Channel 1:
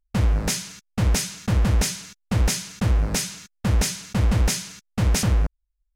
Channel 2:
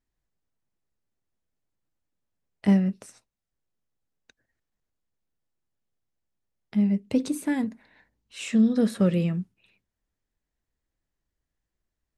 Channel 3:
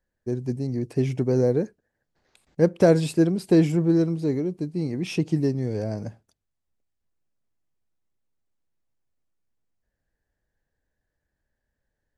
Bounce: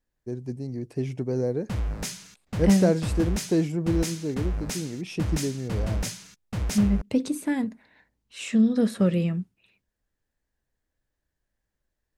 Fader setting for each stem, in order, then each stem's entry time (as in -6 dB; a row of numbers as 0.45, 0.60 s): -8.5, 0.0, -5.5 dB; 1.55, 0.00, 0.00 s